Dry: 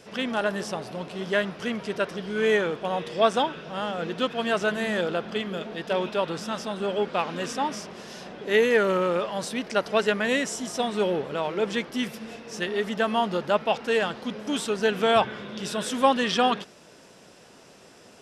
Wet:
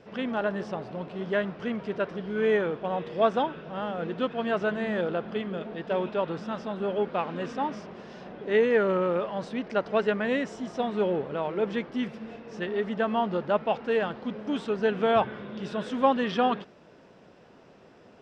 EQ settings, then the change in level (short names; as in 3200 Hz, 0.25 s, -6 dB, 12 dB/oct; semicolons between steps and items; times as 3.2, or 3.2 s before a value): tape spacing loss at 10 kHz 29 dB; 0.0 dB